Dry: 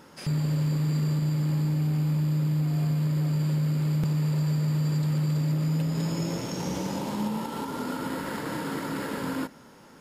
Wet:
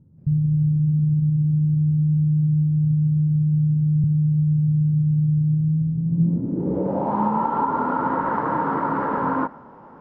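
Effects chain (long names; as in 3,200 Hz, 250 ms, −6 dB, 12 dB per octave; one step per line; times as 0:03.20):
low-pass filter sweep 120 Hz → 1,000 Hz, 0:06.03–0:07.22
dynamic equaliser 1,300 Hz, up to +6 dB, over −44 dBFS, Q 0.95
level +4.5 dB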